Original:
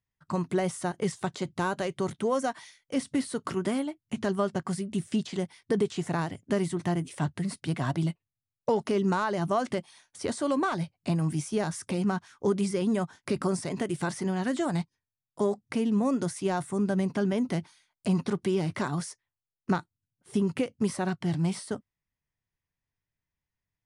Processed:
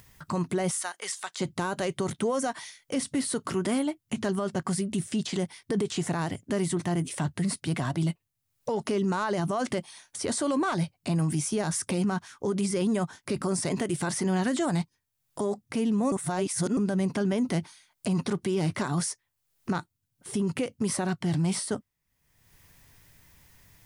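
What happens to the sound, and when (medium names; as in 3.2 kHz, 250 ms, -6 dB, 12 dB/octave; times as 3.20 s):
0.71–1.40 s: high-pass 1.2 kHz
16.12–16.77 s: reverse
whole clip: treble shelf 7.1 kHz +7 dB; upward compressor, threshold -41 dBFS; peak limiter -25 dBFS; trim +5 dB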